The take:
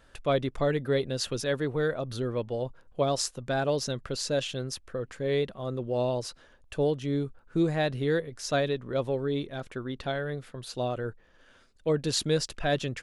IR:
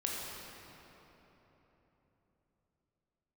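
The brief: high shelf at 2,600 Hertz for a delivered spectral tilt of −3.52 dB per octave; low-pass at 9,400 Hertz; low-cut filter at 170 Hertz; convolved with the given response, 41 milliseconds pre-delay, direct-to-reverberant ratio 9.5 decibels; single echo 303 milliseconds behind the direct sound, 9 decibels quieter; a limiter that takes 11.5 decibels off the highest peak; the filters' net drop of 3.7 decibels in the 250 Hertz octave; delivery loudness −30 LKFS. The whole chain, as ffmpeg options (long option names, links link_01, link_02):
-filter_complex "[0:a]highpass=170,lowpass=9400,equalizer=frequency=250:width_type=o:gain=-4,highshelf=frequency=2600:gain=6,alimiter=limit=-19dB:level=0:latency=1,aecho=1:1:303:0.355,asplit=2[link_01][link_02];[1:a]atrim=start_sample=2205,adelay=41[link_03];[link_02][link_03]afir=irnorm=-1:irlink=0,volume=-13.5dB[link_04];[link_01][link_04]amix=inputs=2:normalize=0,volume=1dB"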